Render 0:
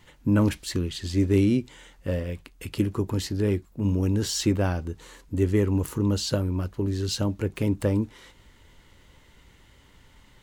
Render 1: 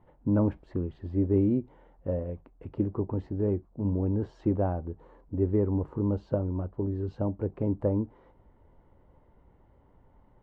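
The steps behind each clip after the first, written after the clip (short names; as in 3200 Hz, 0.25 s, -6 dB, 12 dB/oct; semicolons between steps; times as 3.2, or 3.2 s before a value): synth low-pass 760 Hz, resonance Q 1.7; gain -4.5 dB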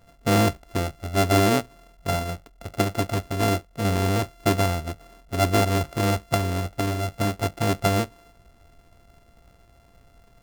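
sample sorter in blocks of 64 samples; gain +5 dB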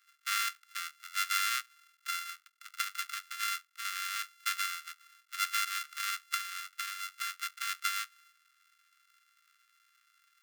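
steep high-pass 1200 Hz 96 dB/oct; gain -4 dB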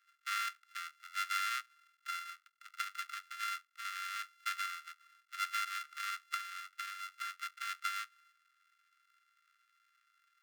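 formant sharpening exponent 1.5; gain -4.5 dB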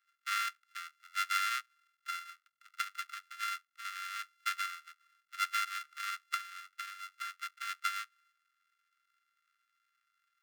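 upward expander 1.5:1, over -52 dBFS; gain +4 dB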